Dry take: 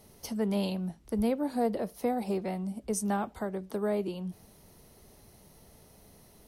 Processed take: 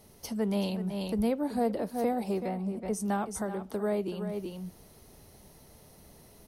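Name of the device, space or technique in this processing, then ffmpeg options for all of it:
ducked delay: -filter_complex "[0:a]asplit=3[link_01][link_02][link_03];[link_02]adelay=377,volume=-3dB[link_04];[link_03]apad=whole_len=302375[link_05];[link_04][link_05]sidechaincompress=threshold=-39dB:ratio=8:attack=7.1:release=172[link_06];[link_01][link_06]amix=inputs=2:normalize=0,asplit=3[link_07][link_08][link_09];[link_07]afade=type=out:start_time=2.47:duration=0.02[link_10];[link_08]adynamicequalizer=threshold=0.00158:dfrequency=2600:dqfactor=0.7:tfrequency=2600:tqfactor=0.7:attack=5:release=100:ratio=0.375:range=4:mode=cutabove:tftype=highshelf,afade=type=in:start_time=2.47:duration=0.02,afade=type=out:start_time=2.99:duration=0.02[link_11];[link_09]afade=type=in:start_time=2.99:duration=0.02[link_12];[link_10][link_11][link_12]amix=inputs=3:normalize=0"

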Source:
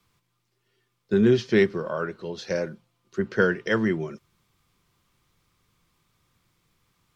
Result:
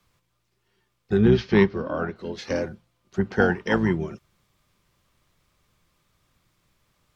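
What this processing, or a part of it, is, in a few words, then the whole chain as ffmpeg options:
octave pedal: -filter_complex "[0:a]asplit=2[link_01][link_02];[link_02]asetrate=22050,aresample=44100,atempo=2,volume=-5dB[link_03];[link_01][link_03]amix=inputs=2:normalize=0,asettb=1/sr,asplit=3[link_04][link_05][link_06];[link_04]atrim=end=1.174[link_07];[link_05]atrim=start=1.17:end=2.16,asetpts=PTS-STARTPTS,afade=type=in:duration=0.004:curve=qsin,afade=type=out:start_time=0.986:duration=0.004:curve=qsin,lowpass=frequency=5300:width=0.5412,lowpass=frequency=5300:width=1.3066[link_08];[link_06]atrim=start=2.156[link_09];[link_07][link_08]acrossfade=duration=0.004:curve1=hsin:curve2=qsin[link_10];[link_10][link_09]acrossfade=duration=0.004:curve1=qsin:curve2=hsin"

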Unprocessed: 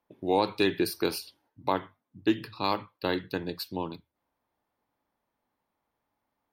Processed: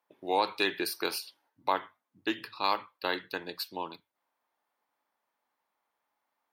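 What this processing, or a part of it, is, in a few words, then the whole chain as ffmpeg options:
filter by subtraction: -filter_complex "[0:a]asplit=2[link_01][link_02];[link_02]lowpass=1200,volume=-1[link_03];[link_01][link_03]amix=inputs=2:normalize=0"

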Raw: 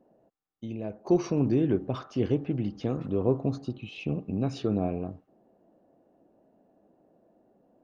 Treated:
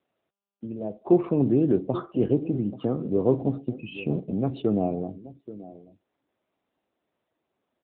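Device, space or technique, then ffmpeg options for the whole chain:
mobile call with aggressive noise cancelling: -af "highpass=frequency=73:poles=1,highpass=frequency=120:poles=1,aecho=1:1:832:0.178,afftdn=noise_reduction=31:noise_floor=-44,volume=5dB" -ar 8000 -c:a libopencore_amrnb -b:a 10200

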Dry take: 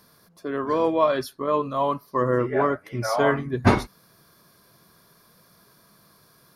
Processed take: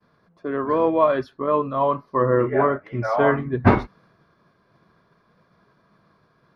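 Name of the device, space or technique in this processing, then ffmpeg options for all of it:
hearing-loss simulation: -filter_complex "[0:a]asettb=1/sr,asplit=3[link_01][link_02][link_03];[link_01]atrim=end=1.734[link_04];[link_02]atrim=start=1.73:end=2.83,asetpts=PTS-STARTPTS,afade=type=in:duration=0.004:curve=qsin,afade=type=out:start_time=1.096:duration=0.004:curve=qsin,asplit=2[link_05][link_06];[link_06]adelay=30,volume=-10dB[link_07];[link_05][link_07]amix=inputs=2:normalize=0,atrim=end_sample=48510[link_08];[link_03]atrim=start=2.826[link_09];[link_04][link_08]acrossfade=duration=0.004:curve1=hsin:curve2=qsin[link_10];[link_10][link_09]acrossfade=duration=0.004:curve1=qsin:curve2=hsin,lowpass=2200,agate=range=-33dB:threshold=-55dB:ratio=3:detection=peak,volume=2.5dB"

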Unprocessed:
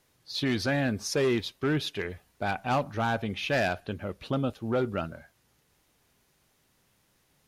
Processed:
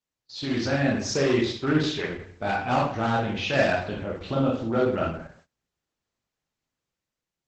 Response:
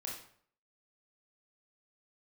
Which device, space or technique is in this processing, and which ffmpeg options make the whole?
speakerphone in a meeting room: -filter_complex "[1:a]atrim=start_sample=2205[link_01];[0:a][link_01]afir=irnorm=-1:irlink=0,dynaudnorm=framelen=120:gausssize=11:maxgain=6dB,agate=range=-21dB:threshold=-54dB:ratio=16:detection=peak" -ar 48000 -c:a libopus -b:a 12k

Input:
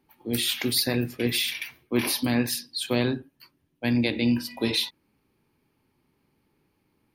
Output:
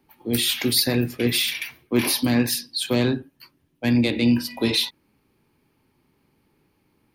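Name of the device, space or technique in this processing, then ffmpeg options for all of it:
one-band saturation: -filter_complex "[0:a]acrossover=split=400|3700[link_01][link_02][link_03];[link_02]asoftclip=type=tanh:threshold=-25dB[link_04];[link_01][link_04][link_03]amix=inputs=3:normalize=0,volume=4.5dB"

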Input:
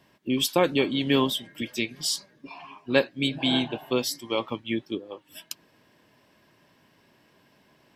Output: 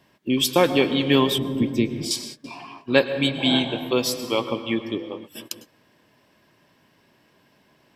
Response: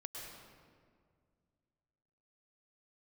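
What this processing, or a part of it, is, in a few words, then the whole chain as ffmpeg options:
keyed gated reverb: -filter_complex "[0:a]asplit=3[link_01][link_02][link_03];[1:a]atrim=start_sample=2205[link_04];[link_02][link_04]afir=irnorm=-1:irlink=0[link_05];[link_03]apad=whole_len=350869[link_06];[link_05][link_06]sidechaingate=range=-33dB:threshold=-49dB:ratio=16:detection=peak,volume=-2.5dB[link_07];[link_01][link_07]amix=inputs=2:normalize=0,asettb=1/sr,asplit=3[link_08][link_09][link_10];[link_08]atrim=end=1.384[link_11];[link_09]atrim=start=1.38:end=2.11,asetpts=PTS-STARTPTS,afade=type=in:duration=0.004:curve=qsin,afade=type=out:start_time=0.726:duration=0.004:curve=qsin,tiltshelf=frequency=650:gain=9.5[link_12];[link_10]atrim=start=2.106[link_13];[link_11][link_12]acrossfade=duration=0.004:curve1=hsin:curve2=qsin[link_14];[link_14][link_13]acrossfade=duration=0.004:curve1=qsin:curve2=hsin,volume=1dB"

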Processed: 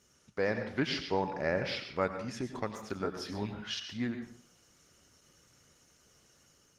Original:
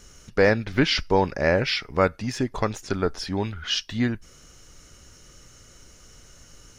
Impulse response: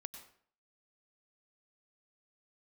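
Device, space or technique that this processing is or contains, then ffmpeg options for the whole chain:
far-field microphone of a smart speaker: -filter_complex "[0:a]asettb=1/sr,asplit=3[link_01][link_02][link_03];[link_01]atrim=end=3.024[link_04];[link_02]atrim=start=3.02:end=3.75,asetpts=PTS-STARTPTS,afade=type=in:duration=0.004:curve=qsin,afade=type=out:start_time=0.726:duration=0.004:curve=qsin,asplit=2[link_05][link_06];[link_06]adelay=19,volume=-2.5dB[link_07];[link_05][link_07]amix=inputs=2:normalize=0,atrim=end_sample=32193[link_08];[link_03]atrim=start=3.746[link_09];[link_04][link_08]acrossfade=duration=0.004:curve1=hsin:curve2=qsin[link_10];[link_10][link_09]acrossfade=duration=0.004:curve1=qsin:curve2=hsin[link_11];[1:a]atrim=start_sample=2205[link_12];[link_11][link_12]afir=irnorm=-1:irlink=0,highpass=110,dynaudnorm=framelen=380:gausssize=3:maxgain=3dB,volume=-8.5dB" -ar 48000 -c:a libopus -b:a 20k

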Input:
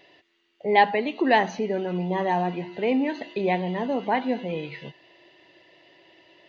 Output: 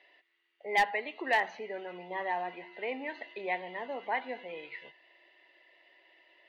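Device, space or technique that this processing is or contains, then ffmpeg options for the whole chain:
megaphone: -af "highpass=530,lowpass=3800,equalizer=frequency=2000:width_type=o:width=0.38:gain=7,asoftclip=type=hard:threshold=-10.5dB,volume=-8dB"

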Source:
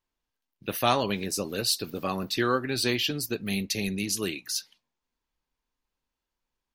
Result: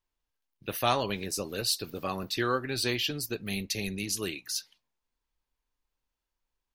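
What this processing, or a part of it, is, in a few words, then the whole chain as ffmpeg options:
low shelf boost with a cut just above: -af "lowshelf=frequency=66:gain=6,equalizer=frequency=220:width_type=o:width=0.98:gain=-4,volume=-2.5dB"

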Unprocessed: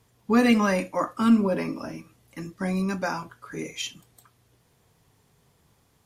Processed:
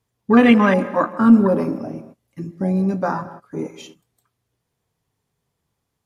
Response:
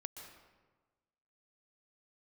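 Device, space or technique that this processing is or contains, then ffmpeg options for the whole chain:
keyed gated reverb: -filter_complex "[0:a]afwtdn=0.0355,asplit=3[link_01][link_02][link_03];[1:a]atrim=start_sample=2205[link_04];[link_02][link_04]afir=irnorm=-1:irlink=0[link_05];[link_03]apad=whole_len=266821[link_06];[link_05][link_06]sidechaingate=range=-33dB:threshold=-54dB:ratio=16:detection=peak,volume=-3dB[link_07];[link_01][link_07]amix=inputs=2:normalize=0,asettb=1/sr,asplit=3[link_08][link_09][link_10];[link_08]atrim=end=1.334[link_11];[link_09]atrim=start=1.33:end=1.78,asetpts=PTS-STARTPTS,afade=type=in:duration=0.004:curve=qsin,afade=type=out:start_time=0.446:duration=0.004:curve=qsin,highshelf=frequency=5200:gain=9.5[link_12];[link_10]atrim=start=1.776[link_13];[link_11][link_12]acrossfade=duration=0.004:curve1=hsin:curve2=qsin[link_14];[link_14][link_13]acrossfade=duration=0.004:curve1=qsin:curve2=hsin,volume=4.5dB"

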